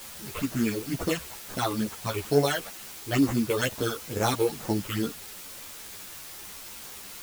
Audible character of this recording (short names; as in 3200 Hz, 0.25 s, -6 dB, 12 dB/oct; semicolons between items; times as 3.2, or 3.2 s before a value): aliases and images of a low sample rate 4800 Hz, jitter 0%; phasing stages 8, 2.2 Hz, lowest notch 200–3900 Hz; a quantiser's noise floor 8-bit, dither triangular; a shimmering, thickened sound